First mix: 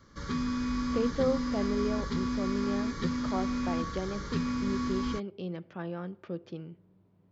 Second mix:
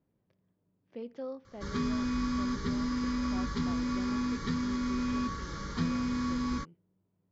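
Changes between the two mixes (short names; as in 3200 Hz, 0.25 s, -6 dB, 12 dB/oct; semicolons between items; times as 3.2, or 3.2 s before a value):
speech -11.5 dB; background: entry +1.45 s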